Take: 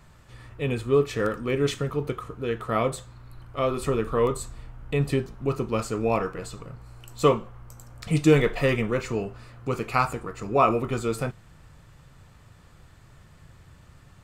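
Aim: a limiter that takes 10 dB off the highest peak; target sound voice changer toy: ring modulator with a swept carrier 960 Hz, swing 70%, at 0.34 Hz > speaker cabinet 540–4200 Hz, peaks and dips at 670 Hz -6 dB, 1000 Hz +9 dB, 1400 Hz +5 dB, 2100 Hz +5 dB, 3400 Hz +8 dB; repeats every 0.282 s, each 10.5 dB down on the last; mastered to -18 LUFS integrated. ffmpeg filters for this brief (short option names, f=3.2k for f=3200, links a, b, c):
-af "alimiter=limit=-16dB:level=0:latency=1,aecho=1:1:282|564|846:0.299|0.0896|0.0269,aeval=exprs='val(0)*sin(2*PI*960*n/s+960*0.7/0.34*sin(2*PI*0.34*n/s))':c=same,highpass=540,equalizer=f=670:t=q:w=4:g=-6,equalizer=f=1k:t=q:w=4:g=9,equalizer=f=1.4k:t=q:w=4:g=5,equalizer=f=2.1k:t=q:w=4:g=5,equalizer=f=3.4k:t=q:w=4:g=8,lowpass=f=4.2k:w=0.5412,lowpass=f=4.2k:w=1.3066,volume=8.5dB"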